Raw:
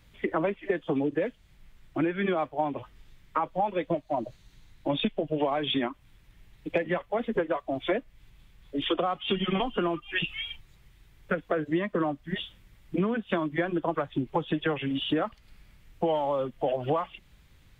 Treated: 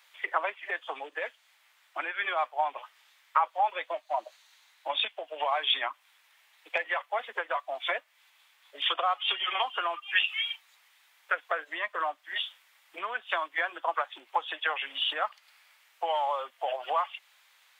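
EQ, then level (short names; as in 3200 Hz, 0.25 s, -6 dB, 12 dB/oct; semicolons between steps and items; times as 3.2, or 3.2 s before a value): HPF 780 Hz 24 dB/oct; +4.5 dB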